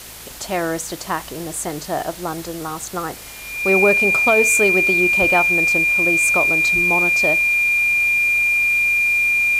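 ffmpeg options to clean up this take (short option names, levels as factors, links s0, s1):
-af "adeclick=t=4,bandreject=f=54.9:t=h:w=4,bandreject=f=109.8:t=h:w=4,bandreject=f=164.7:t=h:w=4,bandreject=f=219.6:t=h:w=4,bandreject=f=2400:w=30,afwtdn=0.016"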